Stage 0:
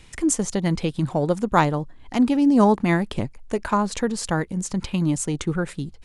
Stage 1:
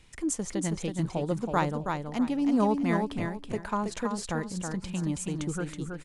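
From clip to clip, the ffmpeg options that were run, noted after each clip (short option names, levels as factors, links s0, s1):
-af "aecho=1:1:324|648|972:0.562|0.146|0.038,volume=0.355"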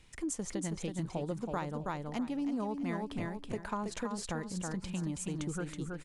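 -af "acompressor=threshold=0.0355:ratio=6,volume=0.708"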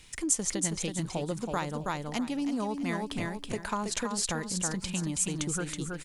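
-af "highshelf=f=2300:g=11,volume=1.41"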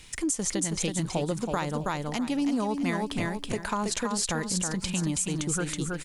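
-af "alimiter=limit=0.0794:level=0:latency=1:release=108,volume=1.68"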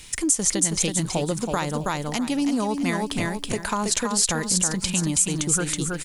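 -af "highshelf=f=5000:g=7.5,volume=1.5"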